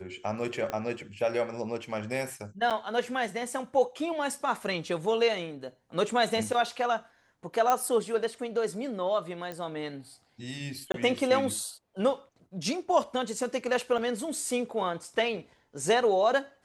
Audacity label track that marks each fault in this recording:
0.700000	0.700000	pop -18 dBFS
2.700000	2.710000	gap 7.3 ms
7.700000	7.700000	pop -12 dBFS
9.520000	9.520000	pop -23 dBFS
10.920000	10.940000	gap 22 ms
13.980000	13.980000	gap 3.8 ms

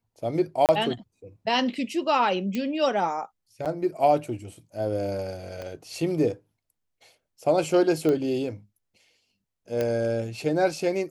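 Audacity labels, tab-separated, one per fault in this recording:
0.660000	0.690000	gap 28 ms
2.550000	2.550000	pop -17 dBFS
3.650000	3.660000	gap 7.2 ms
5.620000	5.620000	pop -23 dBFS
8.090000	8.090000	pop -15 dBFS
9.810000	9.810000	pop -14 dBFS

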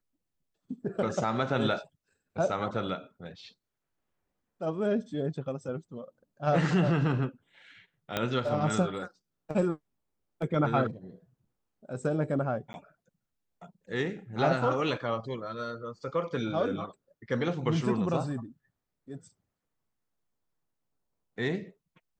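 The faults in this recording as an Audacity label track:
8.170000	8.170000	pop -13 dBFS
12.730000	12.740000	gap 10 ms

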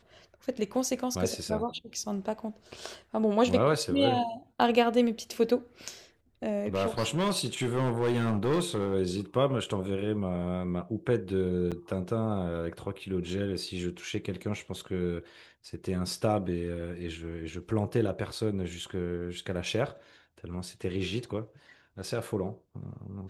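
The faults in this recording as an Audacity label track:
6.660000	8.950000	clipped -23 dBFS
11.710000	11.720000	gap 6.9 ms

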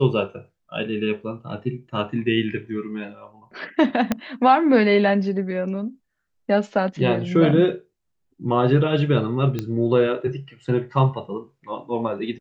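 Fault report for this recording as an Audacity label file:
4.120000	4.120000	pop -7 dBFS
9.590000	9.590000	pop -13 dBFS

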